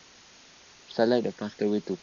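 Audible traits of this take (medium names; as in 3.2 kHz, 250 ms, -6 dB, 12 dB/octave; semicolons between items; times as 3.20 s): phasing stages 12, 1.2 Hz, lowest notch 750–2700 Hz; a quantiser's noise floor 8-bit, dither triangular; AC-3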